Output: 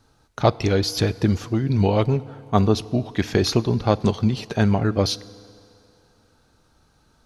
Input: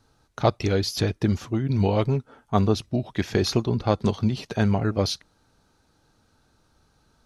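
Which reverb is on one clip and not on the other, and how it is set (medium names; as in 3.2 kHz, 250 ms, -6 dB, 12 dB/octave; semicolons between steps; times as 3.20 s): FDN reverb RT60 2.8 s, low-frequency decay 0.75×, high-frequency decay 0.85×, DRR 18.5 dB; trim +3 dB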